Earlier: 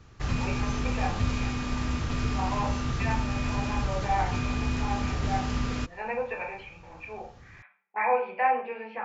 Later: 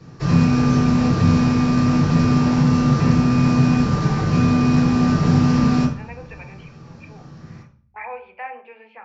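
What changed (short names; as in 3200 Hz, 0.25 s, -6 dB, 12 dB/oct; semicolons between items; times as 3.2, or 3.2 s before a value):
speech: send -11.0 dB; background: send on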